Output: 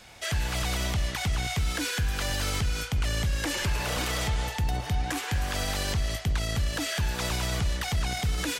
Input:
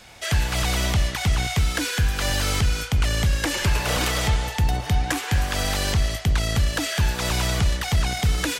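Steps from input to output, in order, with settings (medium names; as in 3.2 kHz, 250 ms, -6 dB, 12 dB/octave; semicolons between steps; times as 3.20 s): peak limiter -16 dBFS, peak gain reduction 4.5 dB; trim -3.5 dB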